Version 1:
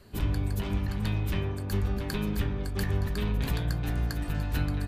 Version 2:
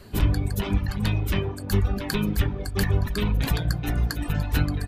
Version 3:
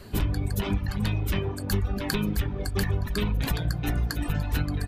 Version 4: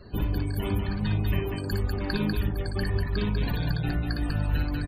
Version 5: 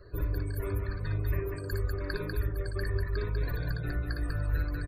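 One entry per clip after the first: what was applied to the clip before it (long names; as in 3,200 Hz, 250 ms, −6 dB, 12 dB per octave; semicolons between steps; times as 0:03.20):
reverb reduction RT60 1.5 s; level +8 dB
downward compressor 4 to 1, threshold −24 dBFS, peak gain reduction 8.5 dB; level +1.5 dB
spectral peaks only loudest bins 64; loudspeakers that aren't time-aligned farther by 20 metres −5 dB, 67 metres −4 dB; level −2.5 dB
phaser with its sweep stopped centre 820 Hz, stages 6; level −2 dB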